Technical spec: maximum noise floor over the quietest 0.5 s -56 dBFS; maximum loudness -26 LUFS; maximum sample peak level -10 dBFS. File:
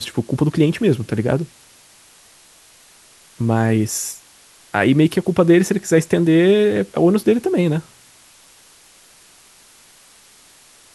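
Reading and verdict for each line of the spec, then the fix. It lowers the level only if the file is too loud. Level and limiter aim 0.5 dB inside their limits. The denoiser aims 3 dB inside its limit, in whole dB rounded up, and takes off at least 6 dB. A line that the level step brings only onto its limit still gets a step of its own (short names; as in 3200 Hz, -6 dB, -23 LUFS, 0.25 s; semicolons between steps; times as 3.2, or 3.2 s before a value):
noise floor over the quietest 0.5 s -49 dBFS: fail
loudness -17.5 LUFS: fail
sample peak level -2.0 dBFS: fail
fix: gain -9 dB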